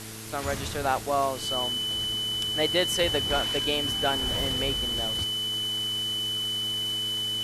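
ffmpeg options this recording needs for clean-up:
-af "bandreject=f=109.6:t=h:w=4,bandreject=f=219.2:t=h:w=4,bandreject=f=328.8:t=h:w=4,bandreject=f=438.4:t=h:w=4,bandreject=f=3000:w=30,afwtdn=0.01"

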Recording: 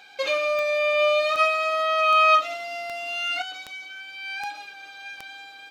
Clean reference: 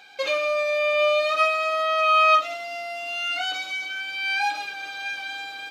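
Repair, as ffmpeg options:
-af "adeclick=t=4,asetnsamples=n=441:p=0,asendcmd='3.42 volume volume 8dB',volume=1"

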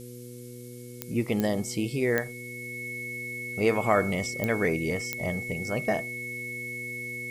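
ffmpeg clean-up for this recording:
-af "adeclick=t=4,bandreject=f=122:t=h:w=4,bandreject=f=244:t=h:w=4,bandreject=f=366:t=h:w=4,bandreject=f=488:t=h:w=4,bandreject=f=2200:w=30,afftdn=nr=30:nf=-42"

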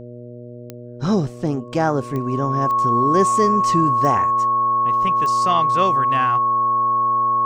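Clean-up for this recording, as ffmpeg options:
-af "adeclick=t=4,bandreject=f=121.1:t=h:w=4,bandreject=f=242.2:t=h:w=4,bandreject=f=363.3:t=h:w=4,bandreject=f=484.4:t=h:w=4,bandreject=f=605.5:t=h:w=4,bandreject=f=1100:w=30"

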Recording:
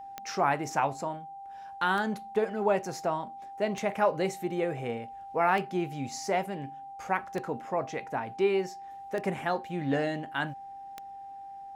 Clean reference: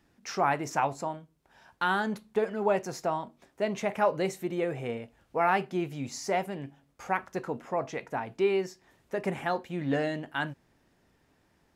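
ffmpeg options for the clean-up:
-af "adeclick=t=4,bandreject=f=790:w=30"

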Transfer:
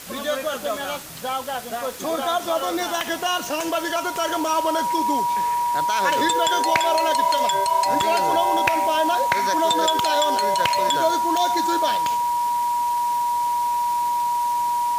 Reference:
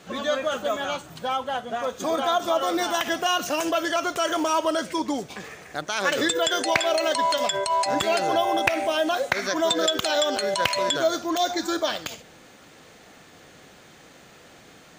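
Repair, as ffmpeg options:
-af "adeclick=t=4,bandreject=f=960:w=30,afwtdn=0.013"

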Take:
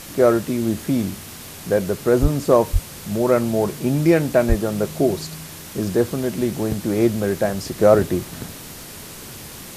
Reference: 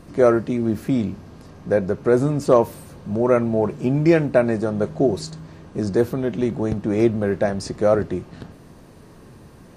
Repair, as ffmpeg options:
-filter_complex "[0:a]asplit=3[s0][s1][s2];[s0]afade=t=out:st=2.21:d=0.02[s3];[s1]highpass=f=140:w=0.5412,highpass=f=140:w=1.3066,afade=t=in:st=2.21:d=0.02,afade=t=out:st=2.33:d=0.02[s4];[s2]afade=t=in:st=2.33:d=0.02[s5];[s3][s4][s5]amix=inputs=3:normalize=0,asplit=3[s6][s7][s8];[s6]afade=t=out:st=2.72:d=0.02[s9];[s7]highpass=f=140:w=0.5412,highpass=f=140:w=1.3066,afade=t=in:st=2.72:d=0.02,afade=t=out:st=2.84:d=0.02[s10];[s8]afade=t=in:st=2.84:d=0.02[s11];[s9][s10][s11]amix=inputs=3:normalize=0,asplit=3[s12][s13][s14];[s12]afade=t=out:st=4.48:d=0.02[s15];[s13]highpass=f=140:w=0.5412,highpass=f=140:w=1.3066,afade=t=in:st=4.48:d=0.02,afade=t=out:st=4.6:d=0.02[s16];[s14]afade=t=in:st=4.6:d=0.02[s17];[s15][s16][s17]amix=inputs=3:normalize=0,afwtdn=0.014,asetnsamples=n=441:p=0,asendcmd='7.79 volume volume -4dB',volume=1"

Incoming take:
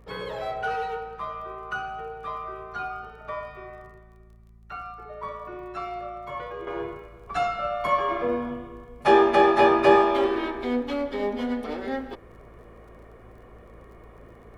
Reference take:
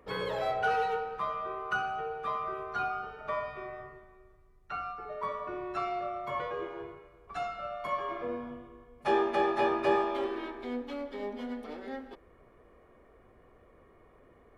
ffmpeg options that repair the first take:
-af "adeclick=t=4,bandreject=f=55.7:t=h:w=4,bandreject=f=111.4:t=h:w=4,bandreject=f=167.1:t=h:w=4,bandreject=f=222.8:t=h:w=4,asetnsamples=n=441:p=0,asendcmd='6.67 volume volume -10dB',volume=1"

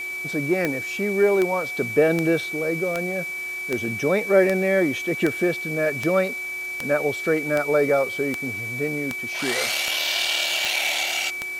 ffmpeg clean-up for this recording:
-af "adeclick=t=4,bandreject=f=364:t=h:w=4,bandreject=f=728:t=h:w=4,bandreject=f=1092:t=h:w=4,bandreject=f=1456:t=h:w=4,bandreject=f=2300:w=30,afwtdn=0.0063"

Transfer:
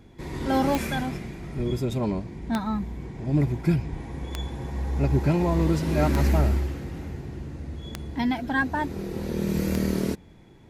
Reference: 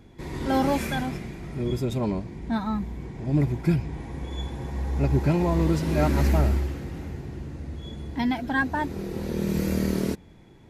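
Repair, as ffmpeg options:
-filter_complex "[0:a]adeclick=t=4,asplit=3[s0][s1][s2];[s0]afade=t=out:st=1.56:d=0.02[s3];[s1]highpass=f=140:w=0.5412,highpass=f=140:w=1.3066,afade=t=in:st=1.56:d=0.02,afade=t=out:st=1.68:d=0.02[s4];[s2]afade=t=in:st=1.68:d=0.02[s5];[s3][s4][s5]amix=inputs=3:normalize=0,asplit=3[s6][s7][s8];[s6]afade=t=out:st=3.91:d=0.02[s9];[s7]highpass=f=140:w=0.5412,highpass=f=140:w=1.3066,afade=t=in:st=3.91:d=0.02,afade=t=out:st=4.03:d=0.02[s10];[s8]afade=t=in:st=4.03:d=0.02[s11];[s9][s10][s11]amix=inputs=3:normalize=0"

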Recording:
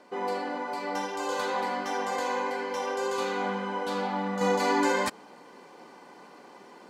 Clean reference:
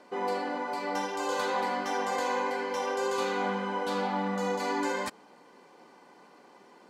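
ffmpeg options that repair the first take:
-af "asetnsamples=n=441:p=0,asendcmd='4.41 volume volume -5.5dB',volume=1"

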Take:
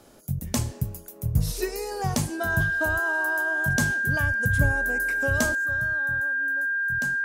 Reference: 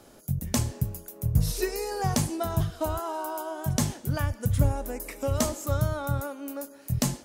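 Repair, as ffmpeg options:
-af "bandreject=f=1600:w=30,asetnsamples=n=441:p=0,asendcmd='5.55 volume volume 11.5dB',volume=1"

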